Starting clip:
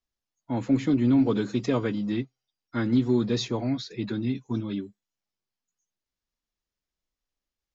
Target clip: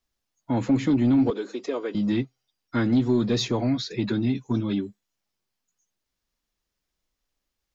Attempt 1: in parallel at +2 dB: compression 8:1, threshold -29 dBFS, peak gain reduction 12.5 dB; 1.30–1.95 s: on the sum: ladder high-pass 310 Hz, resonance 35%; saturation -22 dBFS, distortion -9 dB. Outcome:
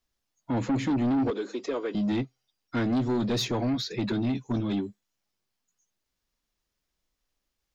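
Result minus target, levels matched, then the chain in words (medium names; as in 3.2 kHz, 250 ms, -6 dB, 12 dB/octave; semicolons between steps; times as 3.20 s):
saturation: distortion +11 dB
in parallel at +2 dB: compression 8:1, threshold -29 dBFS, peak gain reduction 12.5 dB; 1.30–1.95 s: on the sum: ladder high-pass 310 Hz, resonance 35%; saturation -12 dBFS, distortion -20 dB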